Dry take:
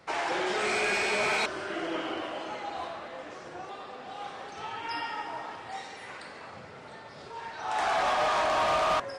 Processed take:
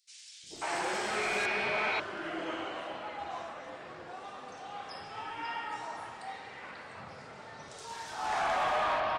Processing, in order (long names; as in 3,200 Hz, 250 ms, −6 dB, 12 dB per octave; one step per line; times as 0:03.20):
fade-out on the ending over 0.81 s
reversed playback
upward compression, threshold −39 dBFS
reversed playback
three-band delay without the direct sound highs, lows, mids 430/540 ms, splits 390/4,200 Hz
level −2.5 dB